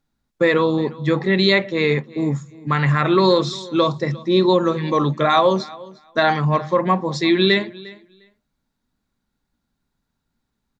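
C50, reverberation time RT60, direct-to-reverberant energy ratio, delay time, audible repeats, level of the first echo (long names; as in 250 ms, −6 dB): no reverb audible, no reverb audible, no reverb audible, 353 ms, 1, −21.0 dB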